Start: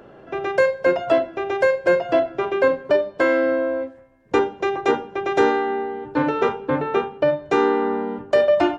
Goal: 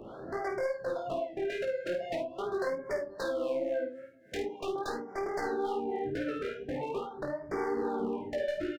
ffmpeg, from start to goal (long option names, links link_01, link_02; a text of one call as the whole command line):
ffmpeg -i in.wav -filter_complex "[0:a]asettb=1/sr,asplit=3[link_01][link_02][link_03];[link_01]atrim=end=3.124[link_04];[link_02]atrim=start=3.12:end=5.44,asetpts=PTS-STARTPTS,afade=type=in:duration=0.004:curve=qsin,afade=type=out:start_time=2.316:duration=0.004:curve=qsin,highpass=150[link_05];[link_03]atrim=start=5.436[link_06];[link_04][link_05]acrossfade=duration=0.004:curve1=hsin:curve2=qsin[link_07];[link_07][link_06]acrossfade=duration=0.004:curve1=qsin:curve2=hsin,acompressor=threshold=-31dB:ratio=6,acrossover=split=490[link_08][link_09];[link_08]aeval=exprs='val(0)*(1-0.7/2+0.7/2*cos(2*PI*3.6*n/s))':channel_layout=same[link_10];[link_09]aeval=exprs='val(0)*(1-0.7/2-0.7/2*cos(2*PI*3.6*n/s))':channel_layout=same[link_11];[link_10][link_11]amix=inputs=2:normalize=0,aeval=exprs='0.0282*(abs(mod(val(0)/0.0282+3,4)-2)-1)':channel_layout=same,flanger=delay=16.5:depth=6.6:speed=2.4,aecho=1:1:51|77:0.447|0.168,afftfilt=real='re*(1-between(b*sr/1024,900*pow(3300/900,0.5+0.5*sin(2*PI*0.43*pts/sr))/1.41,900*pow(3300/900,0.5+0.5*sin(2*PI*0.43*pts/sr))*1.41))':imag='im*(1-between(b*sr/1024,900*pow(3300/900,0.5+0.5*sin(2*PI*0.43*pts/sr))/1.41,900*pow(3300/900,0.5+0.5*sin(2*PI*0.43*pts/sr))*1.41))':win_size=1024:overlap=0.75,volume=6dB" out.wav